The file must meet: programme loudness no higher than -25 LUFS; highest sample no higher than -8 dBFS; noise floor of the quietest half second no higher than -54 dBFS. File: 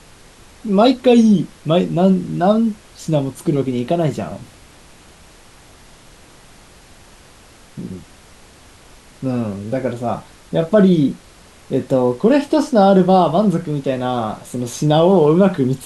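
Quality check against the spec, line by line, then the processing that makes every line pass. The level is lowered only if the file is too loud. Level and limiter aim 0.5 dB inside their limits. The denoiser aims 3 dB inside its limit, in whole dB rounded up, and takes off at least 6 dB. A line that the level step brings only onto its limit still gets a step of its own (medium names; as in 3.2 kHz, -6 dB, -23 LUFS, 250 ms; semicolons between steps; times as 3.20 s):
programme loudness -16.5 LUFS: fail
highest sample -2.0 dBFS: fail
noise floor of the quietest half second -45 dBFS: fail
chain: noise reduction 6 dB, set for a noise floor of -45 dBFS; trim -9 dB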